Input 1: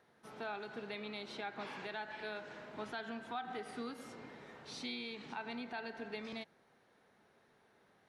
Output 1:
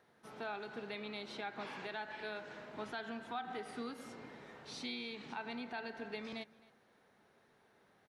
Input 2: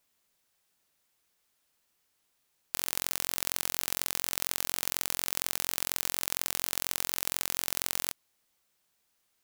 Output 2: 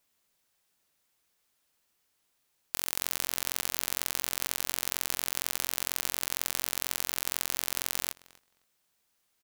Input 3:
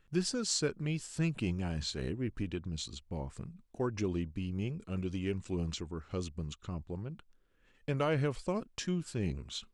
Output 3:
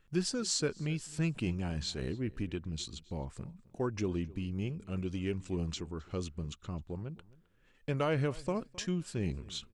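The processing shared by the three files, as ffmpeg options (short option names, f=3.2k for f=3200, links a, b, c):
-filter_complex "[0:a]asplit=2[a][b];[b]adelay=263,lowpass=f=4.2k:p=1,volume=-21dB,asplit=2[c][d];[d]adelay=263,lowpass=f=4.2k:p=1,volume=0.16[e];[a][c][e]amix=inputs=3:normalize=0"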